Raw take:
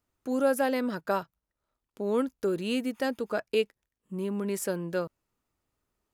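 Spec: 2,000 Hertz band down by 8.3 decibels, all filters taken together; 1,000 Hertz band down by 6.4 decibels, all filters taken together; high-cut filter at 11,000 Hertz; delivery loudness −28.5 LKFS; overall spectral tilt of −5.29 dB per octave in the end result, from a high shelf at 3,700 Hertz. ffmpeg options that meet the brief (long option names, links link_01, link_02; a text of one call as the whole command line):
ffmpeg -i in.wav -af "lowpass=11000,equalizer=frequency=1000:width_type=o:gain=-6.5,equalizer=frequency=2000:width_type=o:gain=-7,highshelf=frequency=3700:gain=-7,volume=3.5dB" out.wav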